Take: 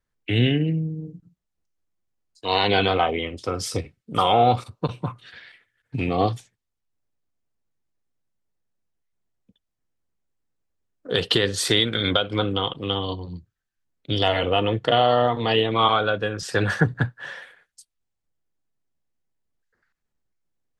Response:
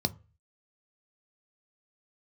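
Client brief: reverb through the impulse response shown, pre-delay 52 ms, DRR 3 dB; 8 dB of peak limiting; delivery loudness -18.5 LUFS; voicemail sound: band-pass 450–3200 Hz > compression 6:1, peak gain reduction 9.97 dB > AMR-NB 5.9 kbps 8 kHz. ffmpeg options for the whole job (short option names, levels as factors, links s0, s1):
-filter_complex "[0:a]alimiter=limit=0.224:level=0:latency=1,asplit=2[s0][s1];[1:a]atrim=start_sample=2205,adelay=52[s2];[s1][s2]afir=irnorm=-1:irlink=0,volume=0.376[s3];[s0][s3]amix=inputs=2:normalize=0,highpass=450,lowpass=3200,acompressor=threshold=0.0562:ratio=6,volume=5.31" -ar 8000 -c:a libopencore_amrnb -b:a 5900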